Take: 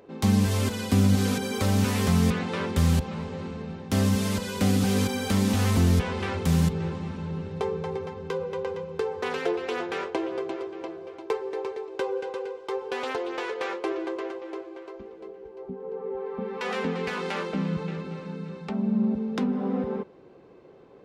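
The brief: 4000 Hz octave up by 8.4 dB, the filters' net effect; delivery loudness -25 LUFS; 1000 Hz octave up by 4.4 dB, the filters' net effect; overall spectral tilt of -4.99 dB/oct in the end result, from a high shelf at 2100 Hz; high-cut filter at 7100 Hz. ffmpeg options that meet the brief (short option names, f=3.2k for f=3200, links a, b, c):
-af "lowpass=7.1k,equalizer=f=1k:t=o:g=4,highshelf=f=2.1k:g=5.5,equalizer=f=4k:t=o:g=5.5,volume=1dB"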